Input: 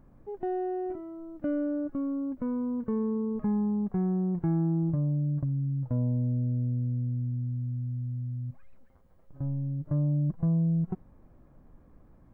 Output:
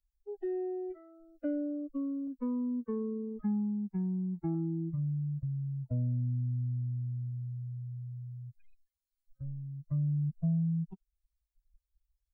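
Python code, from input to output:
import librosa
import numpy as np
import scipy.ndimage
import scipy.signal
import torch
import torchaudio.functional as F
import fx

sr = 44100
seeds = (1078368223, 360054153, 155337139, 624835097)

y = fx.bin_expand(x, sr, power=3.0)
y = fx.filter_lfo_notch(y, sr, shape='saw_up', hz=0.44, low_hz=610.0, high_hz=1600.0, q=2.7)
y = fx.band_squash(y, sr, depth_pct=40)
y = F.gain(torch.from_numpy(y), -1.0).numpy()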